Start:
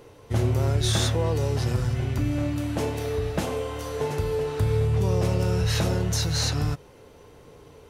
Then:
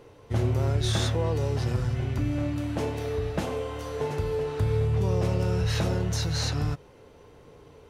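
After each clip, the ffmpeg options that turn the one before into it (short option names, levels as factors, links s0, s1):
-af "highshelf=f=6600:g=-8,volume=0.794"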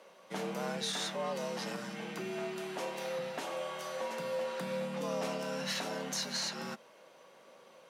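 -af "highpass=f=820:p=1,alimiter=level_in=1.19:limit=0.0631:level=0:latency=1:release=261,volume=0.841,afreqshift=82"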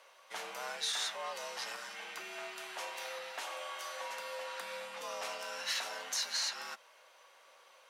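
-af "highpass=950,volume=1.19"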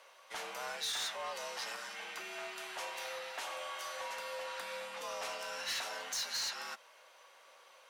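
-af "asoftclip=type=tanh:threshold=0.0237,volume=1.12"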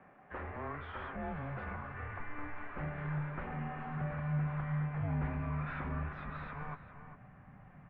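-filter_complex "[0:a]asplit=2[s0][s1];[s1]adelay=400,highpass=300,lowpass=3400,asoftclip=type=hard:threshold=0.0106,volume=0.316[s2];[s0][s2]amix=inputs=2:normalize=0,highpass=f=390:t=q:w=0.5412,highpass=f=390:t=q:w=1.307,lowpass=f=2300:t=q:w=0.5176,lowpass=f=2300:t=q:w=0.7071,lowpass=f=2300:t=q:w=1.932,afreqshift=-370,asubboost=boost=11.5:cutoff=120,volume=1.19"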